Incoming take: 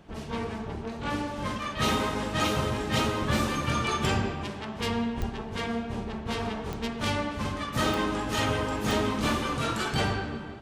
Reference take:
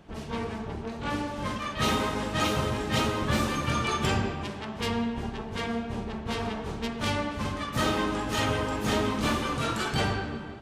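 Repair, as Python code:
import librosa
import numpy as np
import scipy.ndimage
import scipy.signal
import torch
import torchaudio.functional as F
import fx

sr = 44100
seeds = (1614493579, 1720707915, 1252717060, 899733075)

y = fx.fix_declick_ar(x, sr, threshold=10.0)
y = fx.highpass(y, sr, hz=140.0, slope=24, at=(5.19, 5.31), fade=0.02)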